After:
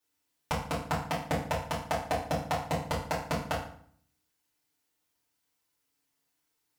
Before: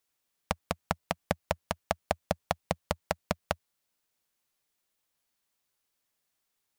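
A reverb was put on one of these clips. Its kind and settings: FDN reverb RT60 0.57 s, low-frequency decay 1.35×, high-frequency decay 0.8×, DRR -9 dB; gain -7.5 dB

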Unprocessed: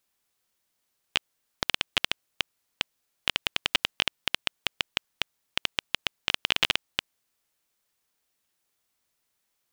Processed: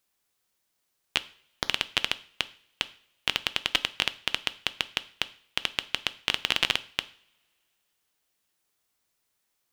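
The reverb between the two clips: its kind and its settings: two-slope reverb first 0.46 s, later 2.6 s, from -28 dB, DRR 13.5 dB

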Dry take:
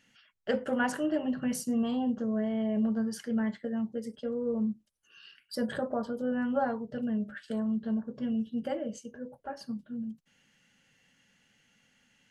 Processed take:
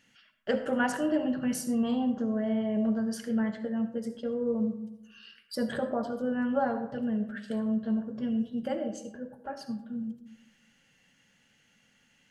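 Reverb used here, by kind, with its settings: digital reverb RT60 0.9 s, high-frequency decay 0.4×, pre-delay 30 ms, DRR 9.5 dB; gain +1 dB

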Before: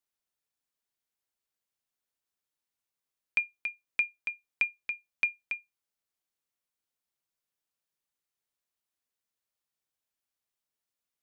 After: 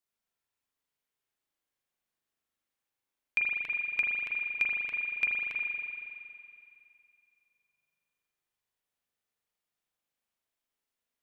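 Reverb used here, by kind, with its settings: spring tank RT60 2.6 s, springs 39 ms, chirp 70 ms, DRR -3 dB; gain -1.5 dB

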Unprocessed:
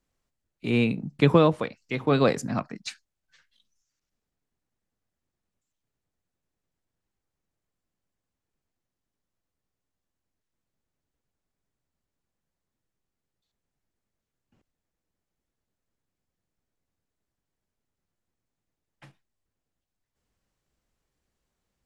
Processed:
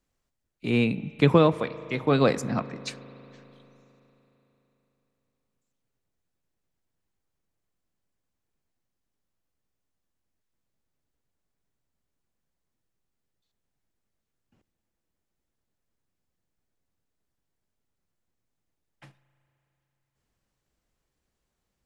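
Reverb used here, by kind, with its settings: spring tank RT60 3.7 s, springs 37 ms, chirp 40 ms, DRR 16 dB

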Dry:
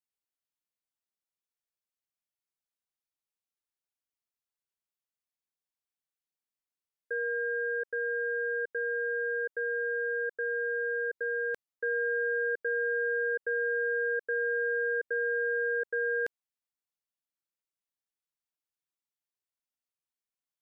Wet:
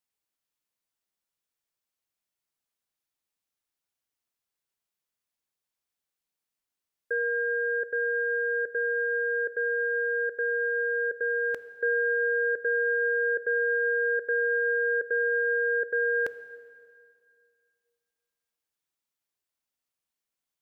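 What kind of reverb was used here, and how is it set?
plate-style reverb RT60 2.2 s, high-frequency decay 0.9×, pre-delay 0 ms, DRR 13 dB; gain +5 dB

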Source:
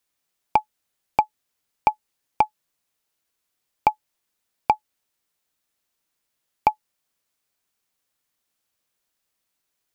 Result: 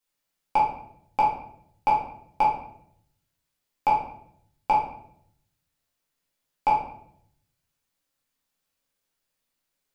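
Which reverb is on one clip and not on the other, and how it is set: shoebox room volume 130 m³, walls mixed, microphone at 2.1 m; gain -9.5 dB

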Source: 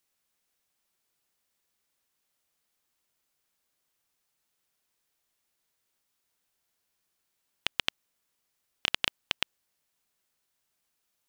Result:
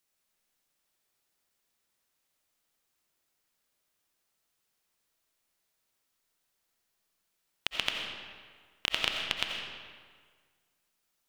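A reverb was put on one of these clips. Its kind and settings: digital reverb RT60 1.7 s, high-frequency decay 0.75×, pre-delay 45 ms, DRR 1.5 dB; gain -1.5 dB

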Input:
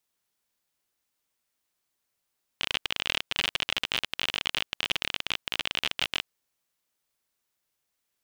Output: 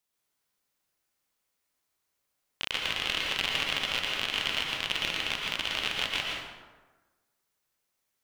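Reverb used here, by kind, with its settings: plate-style reverb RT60 1.3 s, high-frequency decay 0.55×, pre-delay 0.105 s, DRR -2.5 dB; gain -3 dB

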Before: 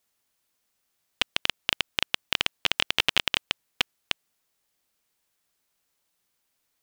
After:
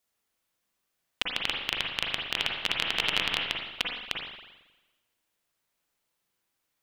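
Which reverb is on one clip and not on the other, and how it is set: spring tank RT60 1.1 s, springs 39/45/55 ms, chirp 40 ms, DRR -1 dB; gain -5 dB

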